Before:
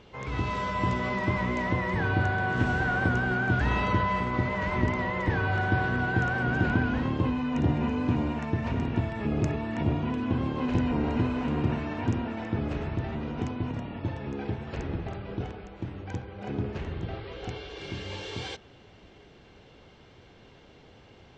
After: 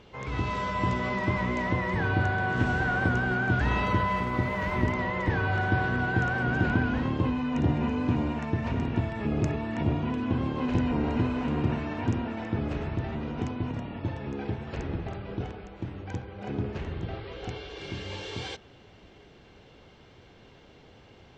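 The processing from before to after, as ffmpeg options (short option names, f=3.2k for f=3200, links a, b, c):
-filter_complex "[0:a]asplit=3[a][b][c];[a]afade=t=out:st=3.83:d=0.02[d];[b]aeval=exprs='sgn(val(0))*max(abs(val(0))-0.00141,0)':c=same,afade=t=in:st=3.83:d=0.02,afade=t=out:st=4.92:d=0.02[e];[c]afade=t=in:st=4.92:d=0.02[f];[d][e][f]amix=inputs=3:normalize=0"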